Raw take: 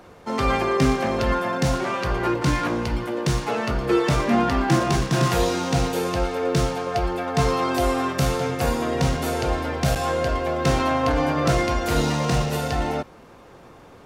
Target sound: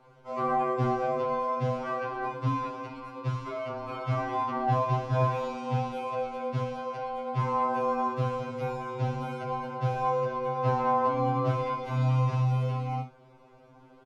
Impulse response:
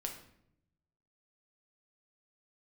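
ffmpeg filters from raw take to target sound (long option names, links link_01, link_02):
-filter_complex "[0:a]aemphasis=mode=reproduction:type=cd,acrossover=split=3500[link_01][link_02];[link_02]acompressor=threshold=-45dB:ratio=4:attack=1:release=60[link_03];[link_01][link_03]amix=inputs=2:normalize=0,highshelf=frequency=7800:gain=-11.5,bandreject=frequency=1800:width=6.1,acrossover=split=7400[link_04][link_05];[link_04]flanger=delay=7.4:depth=4.8:regen=-82:speed=0.2:shape=triangular[link_06];[link_05]alimiter=level_in=32.5dB:limit=-24dB:level=0:latency=1:release=353,volume=-32.5dB[link_07];[link_06][link_07]amix=inputs=2:normalize=0,asoftclip=type=hard:threshold=-15.5dB,afreqshift=-21,asplit=2[link_08][link_09];[link_09]aecho=0:1:22|62:0.422|0.282[link_10];[link_08][link_10]amix=inputs=2:normalize=0,afftfilt=real='re*2.45*eq(mod(b,6),0)':imag='im*2.45*eq(mod(b,6),0)':win_size=2048:overlap=0.75,volume=-3dB"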